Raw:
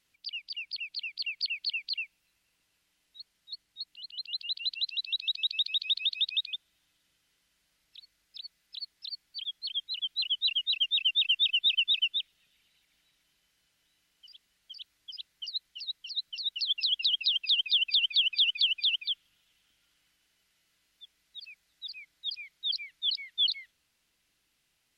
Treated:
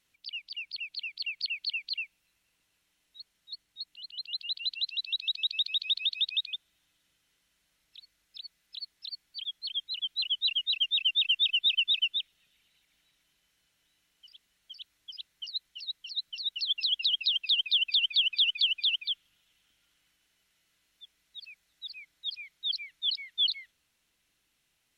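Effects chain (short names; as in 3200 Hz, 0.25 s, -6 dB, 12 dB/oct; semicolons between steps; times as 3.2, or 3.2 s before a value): notch 4800 Hz, Q 13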